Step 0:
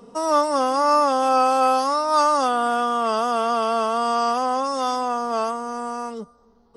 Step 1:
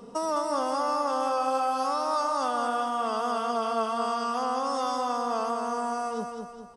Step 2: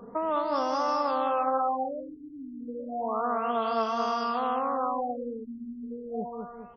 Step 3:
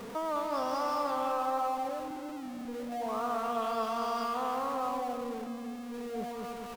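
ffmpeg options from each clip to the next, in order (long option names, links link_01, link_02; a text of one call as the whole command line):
ffmpeg -i in.wav -af "acompressor=threshold=-27dB:ratio=4,aecho=1:1:208|416|624|832|1040|1248:0.562|0.259|0.119|0.0547|0.0252|0.0116" out.wav
ffmpeg -i in.wav -af "equalizer=frequency=78:width_type=o:width=0.66:gain=5.5,acrusher=bits=5:mode=log:mix=0:aa=0.000001,afftfilt=real='re*lt(b*sr/1024,390*pow(6400/390,0.5+0.5*sin(2*PI*0.31*pts/sr)))':imag='im*lt(b*sr/1024,390*pow(6400/390,0.5+0.5*sin(2*PI*0.31*pts/sr)))':win_size=1024:overlap=0.75" out.wav
ffmpeg -i in.wav -filter_complex "[0:a]aeval=exprs='val(0)+0.5*0.0211*sgn(val(0))':channel_layout=same,asplit=2[link_01][link_02];[link_02]adelay=321,lowpass=frequency=3200:poles=1,volume=-10dB,asplit=2[link_03][link_04];[link_04]adelay=321,lowpass=frequency=3200:poles=1,volume=0.44,asplit=2[link_05][link_06];[link_06]adelay=321,lowpass=frequency=3200:poles=1,volume=0.44,asplit=2[link_07][link_08];[link_08]adelay=321,lowpass=frequency=3200:poles=1,volume=0.44,asplit=2[link_09][link_10];[link_10]adelay=321,lowpass=frequency=3200:poles=1,volume=0.44[link_11];[link_03][link_05][link_07][link_09][link_11]amix=inputs=5:normalize=0[link_12];[link_01][link_12]amix=inputs=2:normalize=0,volume=-6.5dB" out.wav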